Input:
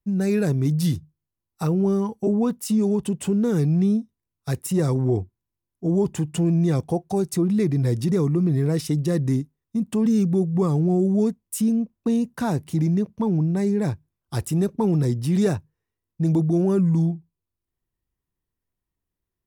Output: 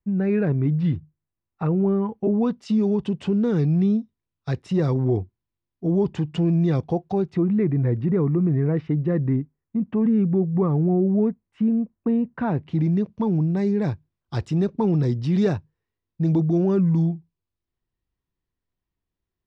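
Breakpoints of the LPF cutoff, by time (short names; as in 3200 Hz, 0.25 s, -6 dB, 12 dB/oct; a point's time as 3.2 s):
LPF 24 dB/oct
2.07 s 2500 Hz
2.49 s 4500 Hz
7.03 s 4500 Hz
7.57 s 2200 Hz
12.31 s 2200 Hz
13.07 s 4900 Hz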